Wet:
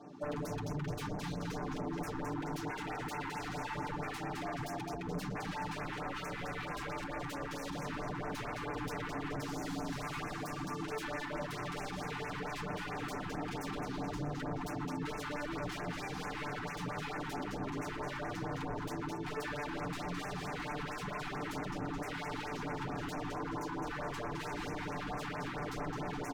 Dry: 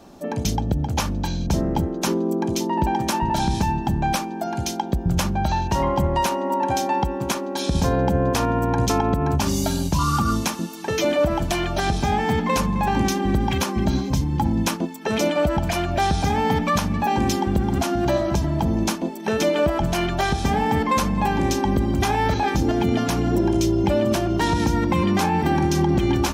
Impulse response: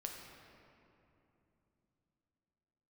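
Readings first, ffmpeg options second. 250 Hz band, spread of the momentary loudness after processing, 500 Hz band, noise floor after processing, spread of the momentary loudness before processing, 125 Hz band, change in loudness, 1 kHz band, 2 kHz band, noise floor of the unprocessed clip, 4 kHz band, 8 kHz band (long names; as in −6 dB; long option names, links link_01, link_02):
−19.0 dB, 1 LU, −18.0 dB, −42 dBFS, 4 LU, −19.5 dB, −18.0 dB, −17.5 dB, −11.5 dB, −29 dBFS, −17.0 dB, −20.5 dB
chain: -filter_complex "[0:a]highpass=130,lowpass=6900,asplit=2[link_01][link_02];[link_02]aecho=0:1:213|426|639|852|1065:0.447|0.201|0.0905|0.0407|0.0183[link_03];[link_01][link_03]amix=inputs=2:normalize=0,acompressor=threshold=-23dB:ratio=4,aeval=exprs='0.0376*(abs(mod(val(0)/0.0376+3,4)-2)-1)':channel_layout=same,highshelf=frequency=2600:gain=-11,bandreject=frequency=540:width=12,aecho=1:1:6.8:0.86,afftfilt=real='re*(1-between(b*sr/1024,510*pow(4000/510,0.5+0.5*sin(2*PI*4.5*pts/sr))/1.41,510*pow(4000/510,0.5+0.5*sin(2*PI*4.5*pts/sr))*1.41))':imag='im*(1-between(b*sr/1024,510*pow(4000/510,0.5+0.5*sin(2*PI*4.5*pts/sr))/1.41,510*pow(4000/510,0.5+0.5*sin(2*PI*4.5*pts/sr))*1.41))':win_size=1024:overlap=0.75,volume=-6dB"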